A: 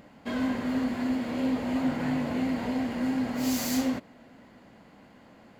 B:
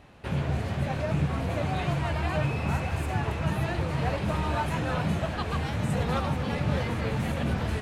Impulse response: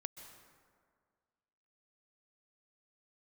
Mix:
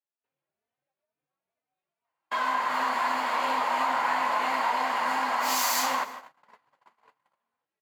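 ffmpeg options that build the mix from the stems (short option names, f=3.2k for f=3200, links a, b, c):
-filter_complex "[0:a]dynaudnorm=f=180:g=7:m=5dB,highpass=f=1k:t=q:w=4.3,adelay=2050,volume=1dB,asplit=2[a][b];[b]volume=-4.5dB[c];[1:a]highpass=430,acompressor=threshold=-41dB:ratio=6,asplit=2[d][e];[e]adelay=3.2,afreqshift=2.2[f];[d][f]amix=inputs=2:normalize=1,volume=-5.5dB[g];[2:a]atrim=start_sample=2205[h];[c][h]afir=irnorm=-1:irlink=0[i];[a][g][i]amix=inputs=3:normalize=0,agate=range=-38dB:threshold=-39dB:ratio=16:detection=peak,acompressor=threshold=-22dB:ratio=6"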